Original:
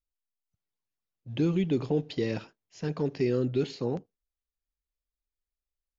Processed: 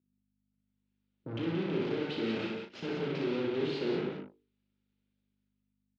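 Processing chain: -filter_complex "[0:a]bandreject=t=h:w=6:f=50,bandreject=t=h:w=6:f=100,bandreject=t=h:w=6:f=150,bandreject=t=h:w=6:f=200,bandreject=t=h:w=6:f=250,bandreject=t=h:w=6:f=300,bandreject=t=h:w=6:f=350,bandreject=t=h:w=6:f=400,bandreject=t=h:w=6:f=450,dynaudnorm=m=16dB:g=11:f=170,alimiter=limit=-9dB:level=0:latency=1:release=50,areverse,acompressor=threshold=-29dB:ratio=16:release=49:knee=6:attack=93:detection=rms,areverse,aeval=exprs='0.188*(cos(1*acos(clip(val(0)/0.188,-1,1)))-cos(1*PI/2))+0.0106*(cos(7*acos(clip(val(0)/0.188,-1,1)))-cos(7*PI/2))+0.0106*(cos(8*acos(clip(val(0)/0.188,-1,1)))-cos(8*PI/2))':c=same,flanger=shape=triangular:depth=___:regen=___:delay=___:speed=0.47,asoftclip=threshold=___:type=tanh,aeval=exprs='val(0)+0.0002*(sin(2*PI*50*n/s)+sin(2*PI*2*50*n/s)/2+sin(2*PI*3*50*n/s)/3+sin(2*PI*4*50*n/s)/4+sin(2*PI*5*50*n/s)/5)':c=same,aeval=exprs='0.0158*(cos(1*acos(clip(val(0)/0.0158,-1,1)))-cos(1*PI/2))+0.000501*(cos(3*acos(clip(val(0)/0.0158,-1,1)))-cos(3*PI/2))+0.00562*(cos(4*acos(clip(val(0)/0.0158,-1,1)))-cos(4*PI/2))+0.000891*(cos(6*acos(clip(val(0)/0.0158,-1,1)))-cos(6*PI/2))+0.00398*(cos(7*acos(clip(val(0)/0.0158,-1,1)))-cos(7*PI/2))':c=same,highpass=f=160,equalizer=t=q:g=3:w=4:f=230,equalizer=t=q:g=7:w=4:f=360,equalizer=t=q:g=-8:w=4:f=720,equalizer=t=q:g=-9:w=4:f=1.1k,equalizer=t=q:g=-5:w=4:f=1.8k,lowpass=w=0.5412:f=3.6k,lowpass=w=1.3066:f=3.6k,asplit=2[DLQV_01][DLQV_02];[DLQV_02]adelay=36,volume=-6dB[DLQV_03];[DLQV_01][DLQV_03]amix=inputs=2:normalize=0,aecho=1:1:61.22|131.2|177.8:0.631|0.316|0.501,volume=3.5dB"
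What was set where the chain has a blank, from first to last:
4.8, -77, 3.6, -36.5dB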